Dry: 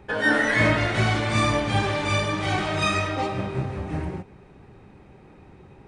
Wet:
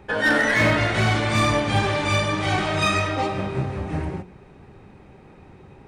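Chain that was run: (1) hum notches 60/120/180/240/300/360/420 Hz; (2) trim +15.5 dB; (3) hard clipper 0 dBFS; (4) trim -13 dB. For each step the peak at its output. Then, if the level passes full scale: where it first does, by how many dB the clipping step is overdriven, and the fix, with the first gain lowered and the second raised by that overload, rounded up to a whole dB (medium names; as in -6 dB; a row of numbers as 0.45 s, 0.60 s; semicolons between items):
-7.5 dBFS, +8.0 dBFS, 0.0 dBFS, -13.0 dBFS; step 2, 8.0 dB; step 2 +7.5 dB, step 4 -5 dB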